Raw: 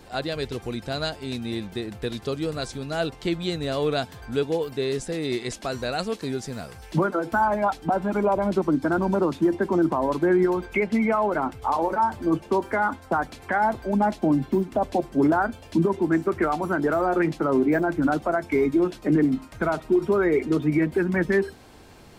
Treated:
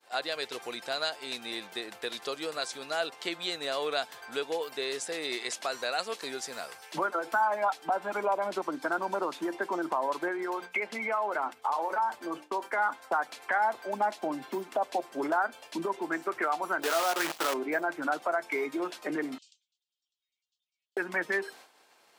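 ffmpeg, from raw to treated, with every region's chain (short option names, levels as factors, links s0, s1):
-filter_complex "[0:a]asettb=1/sr,asplit=3[s0][s1][s2];[s0]atrim=end=10.284[s3];[s1]atrim=start=10.28:end=12.78,asetpts=PTS-STARTPTS,afade=t=in:d=0.004:c=qsin,afade=t=out:st=2.496:d=0.004:c=qsin,agate=range=0.0224:threshold=0.0178:ratio=3:release=100:detection=peak,bandreject=f=60:t=h:w=6,bandreject=f=120:t=h:w=6,bandreject=f=180:t=h:w=6,bandreject=f=240:t=h:w=6,bandreject=f=300:t=h:w=6,acompressor=threshold=0.0794:ratio=2.5:attack=3.2:release=140:knee=1:detection=peak[s4];[s2]atrim=start=12.776[s5];[s3][s4]acrossfade=d=0.004:c1=hsin:c2=qsin[s6];[s6][s5]acrossfade=d=0.004:c1=qsin:c2=hsin,asettb=1/sr,asplit=3[s7][s8][s9];[s7]atrim=end=16.824[s10];[s8]atrim=start=16.82:end=17.54,asetpts=PTS-STARTPTS,afade=t=in:d=0.004:c=qsin,afade=t=out:st=0.716:d=0.004:c=qsin,asplit=2[s11][s12];[s12]adelay=18,volume=0.355[s13];[s11][s13]amix=inputs=2:normalize=0,atrim=end_sample=31752,acrusher=bits=5:dc=4:mix=0:aa=0.000001[s14];[s9]atrim=start=17.536[s15];[s10][s14]acrossfade=d=0.004:c1=hsin:c2=qsin[s16];[s16][s15]acrossfade=d=0.004:c1=qsin:c2=hsin,asettb=1/sr,asplit=3[s17][s18][s19];[s17]atrim=end=19.384[s20];[s18]atrim=start=19.38:end=20.97,asetpts=PTS-STARTPTS,afade=t=in:d=0.004:c=qsin,afade=t=out:st=1.586:d=0.004:c=qsin,asuperpass=centerf=4900:order=12:qfactor=1,acompressor=threshold=0.00178:ratio=4:attack=3.2:release=140:knee=1:detection=peak[s21];[s19]atrim=start=20.966[s22];[s20][s21]acrossfade=d=0.004:c1=hsin:c2=qsin[s23];[s23][s22]acrossfade=d=0.004:c1=qsin:c2=hsin,agate=range=0.0224:threshold=0.01:ratio=3:detection=peak,highpass=690,acompressor=threshold=0.02:ratio=1.5,volume=1.26"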